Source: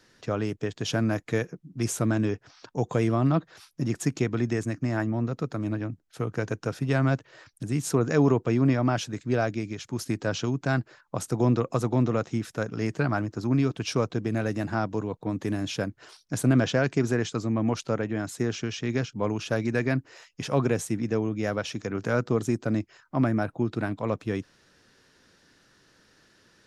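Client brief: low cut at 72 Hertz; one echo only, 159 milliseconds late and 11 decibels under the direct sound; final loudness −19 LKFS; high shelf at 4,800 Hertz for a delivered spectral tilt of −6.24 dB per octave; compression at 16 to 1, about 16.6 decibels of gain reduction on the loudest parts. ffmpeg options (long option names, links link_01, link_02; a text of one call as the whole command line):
ffmpeg -i in.wav -af "highpass=72,highshelf=frequency=4800:gain=-8.5,acompressor=threshold=-34dB:ratio=16,aecho=1:1:159:0.282,volume=21dB" out.wav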